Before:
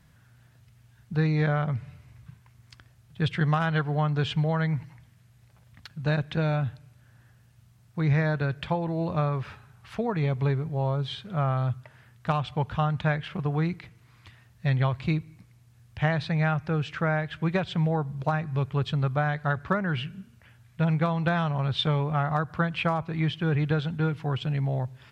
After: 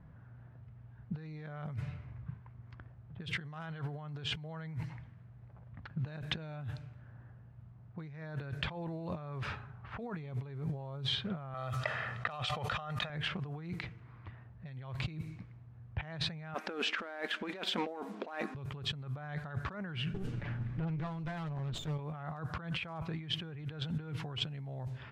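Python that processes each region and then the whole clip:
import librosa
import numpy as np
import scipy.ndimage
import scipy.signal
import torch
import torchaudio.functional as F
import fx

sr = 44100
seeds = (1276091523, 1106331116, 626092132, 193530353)

y = fx.chain(x, sr, fx.highpass(hz=620.0, slope=6),
    fx.comb(ms=1.6, depth=0.53),
    fx.env_flatten(amount_pct=50), at=(11.54, 13.1))
y = fx.chain(y, sr, fx.leveller(passes=1),
    fx.brickwall_highpass(low_hz=200.0), at=(16.54, 18.55))
y = fx.chain(y, sr, fx.lower_of_two(delay_ms=7.0),
    fx.low_shelf(hz=440.0, db=7.0),
    fx.over_compress(threshold_db=-30.0, ratio=-1.0), at=(20.14, 21.99))
y = fx.env_lowpass(y, sr, base_hz=1000.0, full_db=-25.0)
y = fx.over_compress(y, sr, threshold_db=-36.0, ratio=-1.0)
y = y * 10.0 ** (-4.0 / 20.0)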